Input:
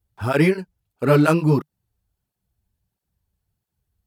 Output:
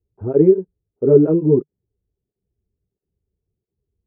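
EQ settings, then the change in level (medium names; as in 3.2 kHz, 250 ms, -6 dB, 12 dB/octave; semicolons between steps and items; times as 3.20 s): resonant low-pass 410 Hz, resonance Q 4.9; distance through air 160 m; -3.0 dB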